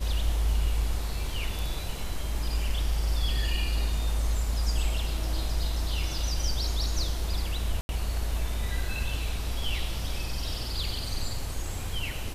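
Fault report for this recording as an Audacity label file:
7.810000	7.890000	dropout 81 ms

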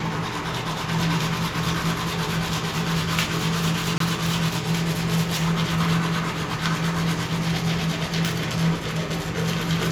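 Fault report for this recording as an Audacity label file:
3.980000	4.000000	dropout 23 ms

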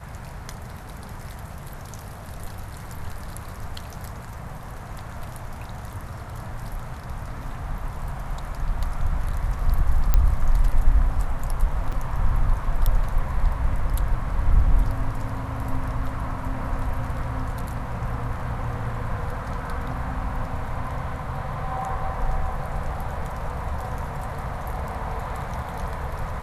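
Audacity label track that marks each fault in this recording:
10.140000	10.140000	pop -7 dBFS
11.920000	11.920000	dropout 4.9 ms

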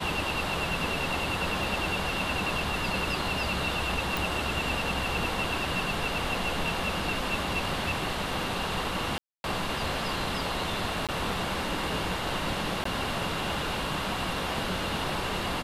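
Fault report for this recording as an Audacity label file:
1.640000	1.640000	dropout 2.5 ms
4.170000	4.170000	pop
9.180000	9.440000	dropout 261 ms
11.070000	11.090000	dropout 17 ms
12.840000	12.850000	dropout 14 ms

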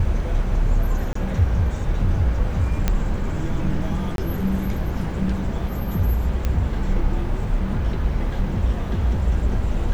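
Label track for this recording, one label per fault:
1.130000	1.150000	dropout 24 ms
2.880000	2.880000	pop -6 dBFS
4.160000	4.180000	dropout 22 ms
6.450000	6.450000	pop -11 dBFS

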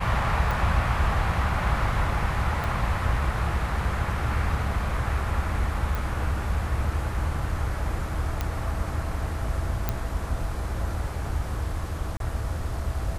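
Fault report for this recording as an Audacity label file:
0.510000	0.510000	pop
2.640000	2.640000	pop
5.950000	5.950000	pop
8.410000	8.410000	pop -13 dBFS
9.890000	9.890000	pop -11 dBFS
12.170000	12.200000	dropout 32 ms

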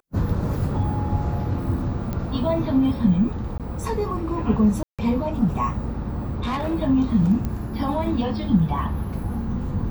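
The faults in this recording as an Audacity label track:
2.130000	2.130000	pop -16 dBFS
3.580000	3.600000	dropout 17 ms
4.830000	4.990000	dropout 156 ms
6.270000	6.750000	clipped -21.5 dBFS
7.450000	7.450000	pop -15 dBFS

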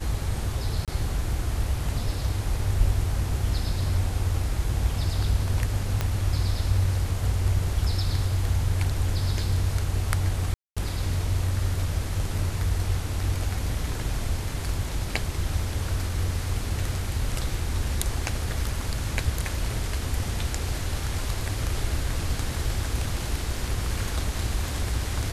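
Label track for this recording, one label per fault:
0.850000	0.880000	dropout 27 ms
6.010000	6.010000	pop -11 dBFS
10.540000	10.770000	dropout 226 ms

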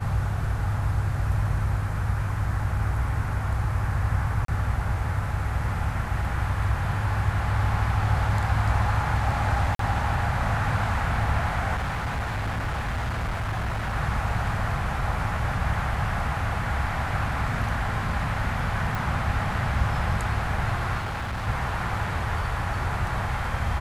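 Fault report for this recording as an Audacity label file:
4.450000	4.480000	dropout 33 ms
9.750000	9.790000	dropout 43 ms
11.750000	13.960000	clipped -24.5 dBFS
18.950000	18.950000	pop
20.980000	21.480000	clipped -27 dBFS

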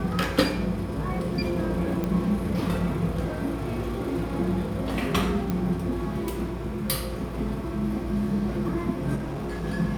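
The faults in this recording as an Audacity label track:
2.040000	2.040000	pop -16 dBFS
5.500000	5.500000	pop -15 dBFS
9.150000	9.640000	clipped -28 dBFS

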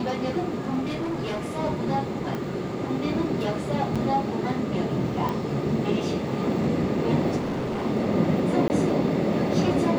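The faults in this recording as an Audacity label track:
0.850000	1.530000	clipped -25 dBFS
2.350000	2.350000	pop -18 dBFS
3.950000	3.960000	dropout 6.2 ms
5.290000	5.290000	pop
7.360000	7.830000	clipped -25 dBFS
8.680000	8.700000	dropout 19 ms

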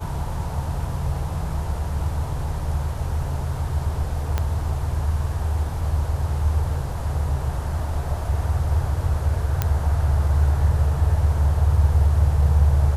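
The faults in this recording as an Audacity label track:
4.380000	4.380000	pop -10 dBFS
9.620000	9.620000	pop -7 dBFS

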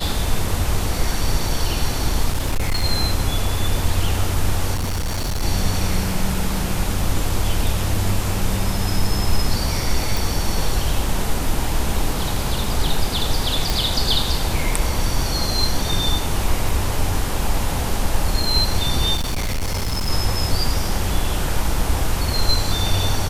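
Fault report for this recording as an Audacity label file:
2.330000	2.850000	clipped -15 dBFS
4.740000	5.430000	clipped -19 dBFS
10.170000	10.170000	pop
13.700000	13.700000	pop
16.690000	16.690000	dropout 2 ms
19.150000	20.100000	clipped -18.5 dBFS

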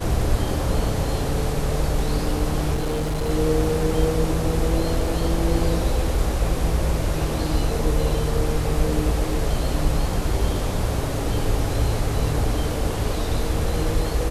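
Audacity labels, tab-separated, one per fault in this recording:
2.740000	3.300000	clipped -20.5 dBFS

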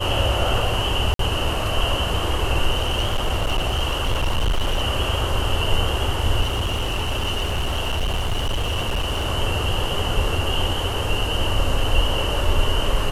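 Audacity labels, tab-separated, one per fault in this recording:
1.140000	1.190000	dropout 53 ms
2.710000	4.840000	clipped -16.5 dBFS
6.410000	9.270000	clipped -18.5 dBFS

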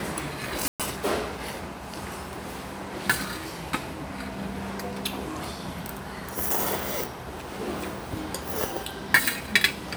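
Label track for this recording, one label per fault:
0.680000	0.800000	dropout 117 ms

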